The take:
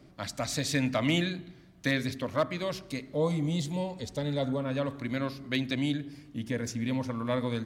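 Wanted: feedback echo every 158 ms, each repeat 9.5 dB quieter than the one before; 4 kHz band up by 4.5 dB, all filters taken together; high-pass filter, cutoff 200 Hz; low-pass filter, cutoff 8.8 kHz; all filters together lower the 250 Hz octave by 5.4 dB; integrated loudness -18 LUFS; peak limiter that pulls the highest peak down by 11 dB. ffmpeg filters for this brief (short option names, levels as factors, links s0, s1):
-af "highpass=200,lowpass=8800,equalizer=f=250:t=o:g=-4.5,equalizer=f=4000:t=o:g=5.5,alimiter=limit=0.0631:level=0:latency=1,aecho=1:1:158|316|474|632:0.335|0.111|0.0365|0.012,volume=7.5"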